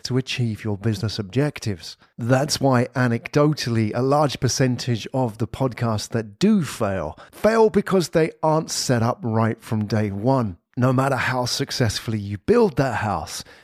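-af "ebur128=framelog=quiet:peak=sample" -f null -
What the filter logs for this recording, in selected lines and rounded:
Integrated loudness:
  I:         -21.6 LUFS
  Threshold: -31.8 LUFS
Loudness range:
  LRA:         1.9 LU
  Threshold: -41.5 LUFS
  LRA low:   -22.5 LUFS
  LRA high:  -20.6 LUFS
Sample peak:
  Peak:       -5.0 dBFS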